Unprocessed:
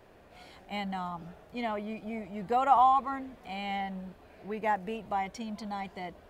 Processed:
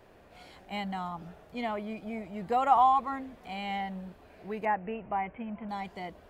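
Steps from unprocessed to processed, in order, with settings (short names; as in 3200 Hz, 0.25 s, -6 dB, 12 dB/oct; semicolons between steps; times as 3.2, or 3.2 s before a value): 4.65–5.69 steep low-pass 2800 Hz 72 dB/oct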